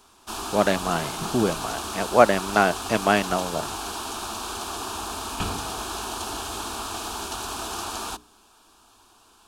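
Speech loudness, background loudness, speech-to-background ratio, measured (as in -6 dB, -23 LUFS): -23.5 LUFS, -31.0 LUFS, 7.5 dB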